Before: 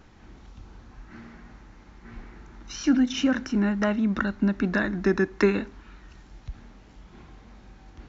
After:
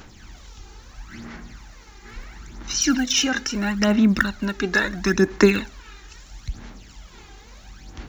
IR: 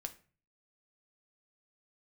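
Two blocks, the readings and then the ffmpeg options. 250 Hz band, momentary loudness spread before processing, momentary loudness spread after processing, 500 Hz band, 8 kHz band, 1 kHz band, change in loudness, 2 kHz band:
+2.5 dB, 18 LU, 21 LU, +4.0 dB, can't be measured, +4.5 dB, +4.0 dB, +7.0 dB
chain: -af "aphaser=in_gain=1:out_gain=1:delay=2.5:decay=0.59:speed=0.75:type=sinusoidal,crystalizer=i=6:c=0"

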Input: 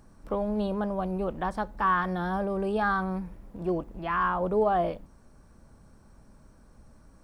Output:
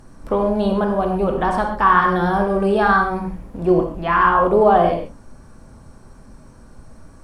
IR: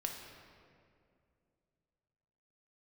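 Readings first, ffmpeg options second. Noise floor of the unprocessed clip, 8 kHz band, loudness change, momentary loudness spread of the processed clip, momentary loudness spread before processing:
−56 dBFS, can't be measured, +11.5 dB, 10 LU, 8 LU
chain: -filter_complex "[1:a]atrim=start_sample=2205,atrim=end_sample=3528,asetrate=23373,aresample=44100[link_01];[0:a][link_01]afir=irnorm=-1:irlink=0,volume=8.5dB"

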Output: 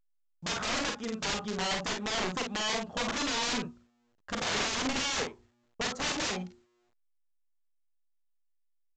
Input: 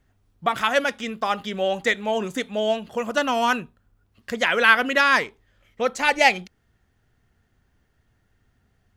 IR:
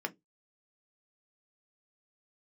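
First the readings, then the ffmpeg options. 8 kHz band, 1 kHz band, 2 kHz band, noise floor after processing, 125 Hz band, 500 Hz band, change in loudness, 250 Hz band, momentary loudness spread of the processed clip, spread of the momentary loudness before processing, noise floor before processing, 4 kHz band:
+3.0 dB, −12.5 dB, −13.5 dB, −72 dBFS, −1.5 dB, −13.0 dB, −10.0 dB, −6.0 dB, 7 LU, 11 LU, −67 dBFS, −3.5 dB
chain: -af "agate=range=-50dB:threshold=-50dB:ratio=16:detection=peak,highshelf=frequency=1600:width_type=q:width=1.5:gain=-9,bandreject=frequency=119.5:width_type=h:width=4,bandreject=frequency=239:width_type=h:width=4,bandreject=frequency=358.5:width_type=h:width=4,aeval=exprs='(mod(12.6*val(0)+1,2)-1)/12.6':channel_layout=same,aecho=1:1:38|50:0.447|0.501,volume=-4.5dB" -ar 16000 -c:a pcm_alaw

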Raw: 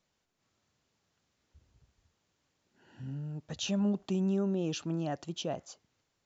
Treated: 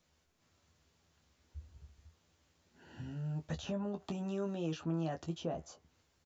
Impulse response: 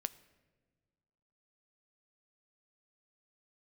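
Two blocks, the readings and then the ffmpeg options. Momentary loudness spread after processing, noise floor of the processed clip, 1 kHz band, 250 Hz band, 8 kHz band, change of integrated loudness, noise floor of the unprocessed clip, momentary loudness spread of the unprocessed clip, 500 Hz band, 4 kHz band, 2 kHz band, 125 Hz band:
18 LU, −76 dBFS, −2.5 dB, −6.5 dB, can't be measured, −5.5 dB, −80 dBFS, 12 LU, −4.0 dB, −9.5 dB, −4.5 dB, −3.5 dB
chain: -filter_complex "[0:a]equalizer=frequency=64:width_type=o:width=0.85:gain=10.5,acrossover=split=590|1600[link_01][link_02][link_03];[link_01]acompressor=threshold=-42dB:ratio=4[link_04];[link_02]acompressor=threshold=-47dB:ratio=4[link_05];[link_03]acompressor=threshold=-58dB:ratio=4[link_06];[link_04][link_05][link_06]amix=inputs=3:normalize=0,aecho=1:1:12|25:0.531|0.316,volume=2.5dB"

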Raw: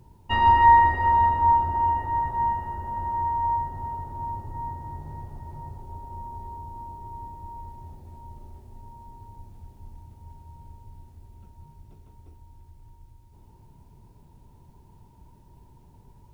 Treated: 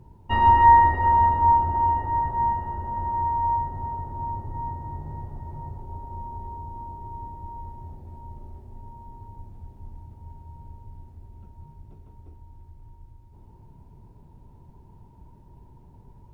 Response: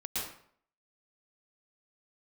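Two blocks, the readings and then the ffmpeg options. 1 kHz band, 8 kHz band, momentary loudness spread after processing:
+1.0 dB, can't be measured, 22 LU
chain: -af "highshelf=frequency=2200:gain=-12,volume=3dB"

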